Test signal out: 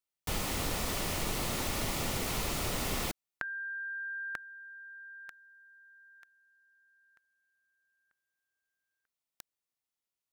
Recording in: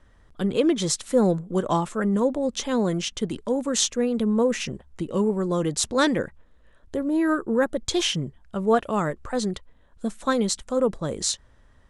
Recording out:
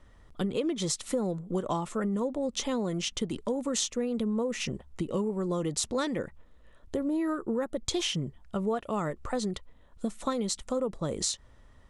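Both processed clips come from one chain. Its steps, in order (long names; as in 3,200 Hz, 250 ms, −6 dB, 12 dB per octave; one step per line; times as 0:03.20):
notch filter 1,600 Hz, Q 9
downward compressor, threshold −27 dBFS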